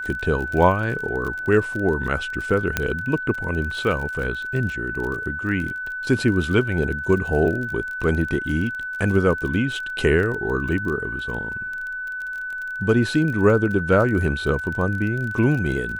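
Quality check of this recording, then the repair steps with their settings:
crackle 30 per s -28 dBFS
whine 1.5 kHz -27 dBFS
2.77 s: pop -5 dBFS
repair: de-click; band-stop 1.5 kHz, Q 30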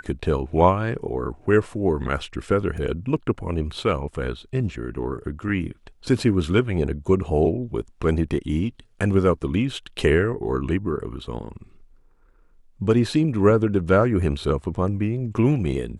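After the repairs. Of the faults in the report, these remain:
2.77 s: pop

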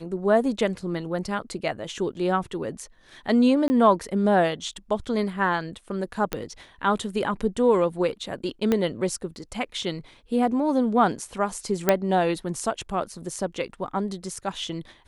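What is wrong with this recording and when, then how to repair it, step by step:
3.68–3.70 s: dropout 20 ms
6.33 s: pop -10 dBFS
8.72 s: pop -10 dBFS
11.89 s: pop -4 dBFS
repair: de-click; interpolate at 3.68 s, 20 ms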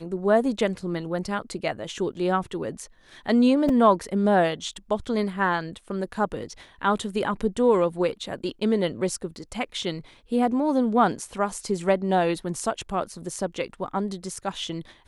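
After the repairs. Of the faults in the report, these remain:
8.72 s: pop

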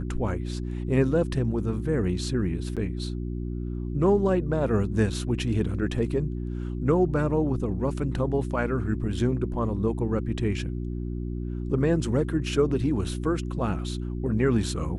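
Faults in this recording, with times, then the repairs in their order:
hum 60 Hz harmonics 6 -31 dBFS
2.76–2.77 s: dropout 7 ms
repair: de-hum 60 Hz, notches 6; interpolate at 2.76 s, 7 ms

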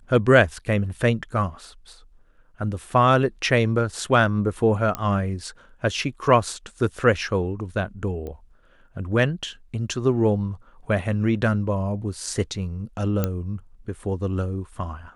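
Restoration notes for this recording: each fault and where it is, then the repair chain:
4.95 s: pop -11 dBFS
8.27 s: pop -23 dBFS
13.24 s: pop -9 dBFS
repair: de-click

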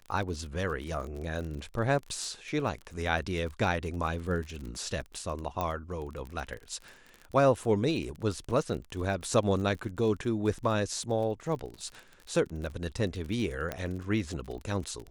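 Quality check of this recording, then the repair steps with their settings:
crackle 33 per s -36 dBFS
5.61 s: pop -18 dBFS
13.72 s: pop -18 dBFS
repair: de-click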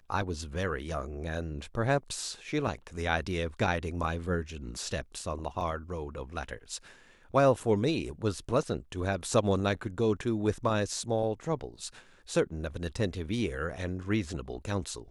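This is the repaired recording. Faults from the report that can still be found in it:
5.61 s: pop

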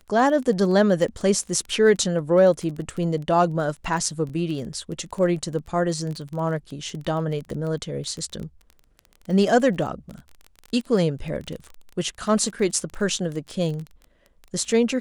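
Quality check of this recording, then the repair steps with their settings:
crackle 21 per s -30 dBFS
4.29 s: dropout 3 ms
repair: de-click; interpolate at 4.29 s, 3 ms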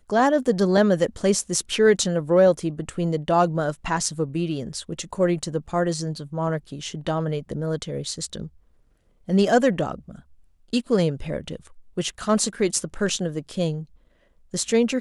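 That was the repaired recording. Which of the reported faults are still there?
nothing left

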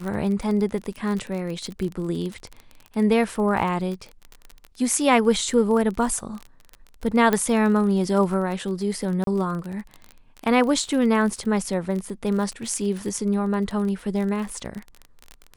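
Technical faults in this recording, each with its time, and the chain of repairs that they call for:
crackle 30 per s -28 dBFS
7.33 s: pop -8 dBFS
9.24–9.27 s: dropout 32 ms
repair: de-click; interpolate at 9.24 s, 32 ms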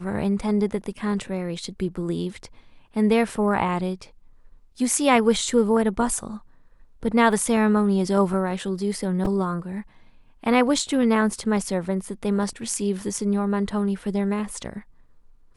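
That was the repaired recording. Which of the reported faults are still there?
7.33 s: pop

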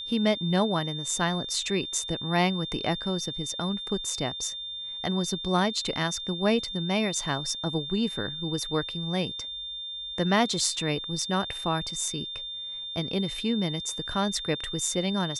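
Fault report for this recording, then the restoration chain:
whine 3.6 kHz -34 dBFS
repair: band-stop 3.6 kHz, Q 30

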